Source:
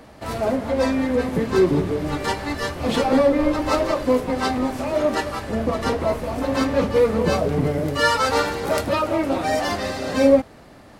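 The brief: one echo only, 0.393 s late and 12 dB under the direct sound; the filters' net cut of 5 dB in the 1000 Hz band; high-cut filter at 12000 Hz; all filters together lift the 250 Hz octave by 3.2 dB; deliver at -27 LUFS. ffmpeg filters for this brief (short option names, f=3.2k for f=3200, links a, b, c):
-af "lowpass=12k,equalizer=f=250:t=o:g=4,equalizer=f=1k:t=o:g=-7,aecho=1:1:393:0.251,volume=-6.5dB"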